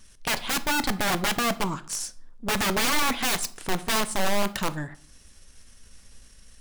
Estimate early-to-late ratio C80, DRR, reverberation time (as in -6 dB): 22.0 dB, 12.0 dB, 0.50 s